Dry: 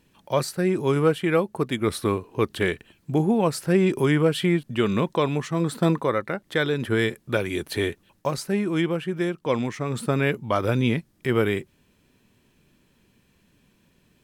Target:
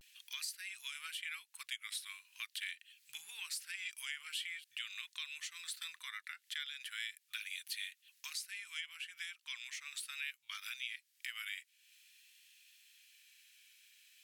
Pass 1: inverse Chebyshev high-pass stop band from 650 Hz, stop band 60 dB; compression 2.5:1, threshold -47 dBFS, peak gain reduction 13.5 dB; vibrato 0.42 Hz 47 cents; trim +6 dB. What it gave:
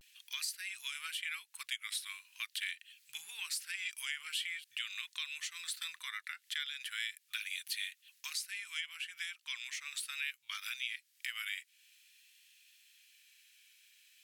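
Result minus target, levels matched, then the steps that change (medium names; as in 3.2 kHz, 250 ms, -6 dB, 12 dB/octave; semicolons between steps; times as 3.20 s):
compression: peak gain reduction -3.5 dB
change: compression 2.5:1, threshold -53 dBFS, peak gain reduction 17 dB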